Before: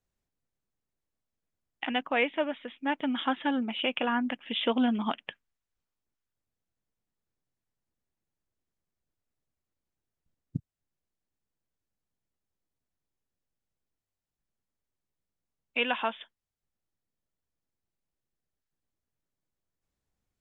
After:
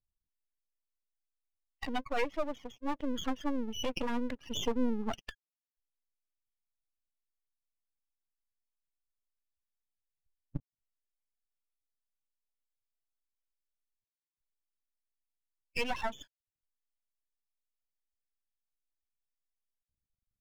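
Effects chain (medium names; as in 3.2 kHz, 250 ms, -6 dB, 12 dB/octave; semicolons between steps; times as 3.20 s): spectral contrast enhancement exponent 2.6; half-wave rectifier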